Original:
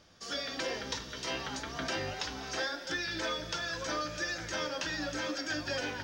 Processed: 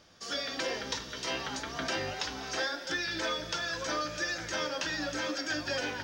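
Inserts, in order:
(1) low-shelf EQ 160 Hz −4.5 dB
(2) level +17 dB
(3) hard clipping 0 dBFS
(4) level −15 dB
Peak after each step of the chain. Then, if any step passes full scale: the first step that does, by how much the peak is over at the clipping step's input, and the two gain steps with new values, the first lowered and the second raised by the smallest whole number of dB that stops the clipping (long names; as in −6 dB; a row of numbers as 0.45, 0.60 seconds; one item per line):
−22.5, −5.5, −5.5, −20.5 dBFS
no step passes full scale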